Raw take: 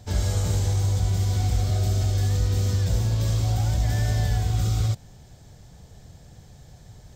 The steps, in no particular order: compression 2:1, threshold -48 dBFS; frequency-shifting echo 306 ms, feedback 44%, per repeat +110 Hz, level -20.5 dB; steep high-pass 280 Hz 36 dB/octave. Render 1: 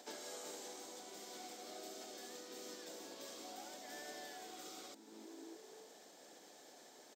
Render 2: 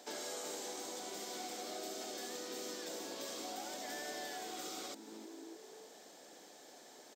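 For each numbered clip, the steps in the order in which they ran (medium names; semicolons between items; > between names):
frequency-shifting echo > compression > steep high-pass; frequency-shifting echo > steep high-pass > compression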